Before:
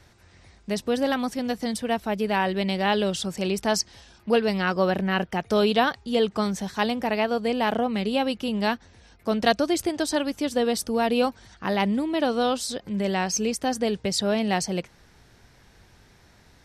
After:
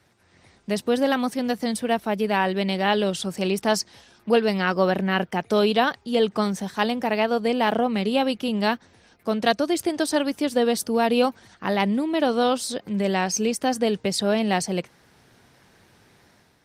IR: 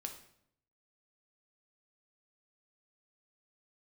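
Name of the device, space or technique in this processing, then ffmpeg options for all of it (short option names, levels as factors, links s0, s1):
video call: -af "highpass=130,dynaudnorm=f=140:g=5:m=2.11,volume=0.668" -ar 48000 -c:a libopus -b:a 32k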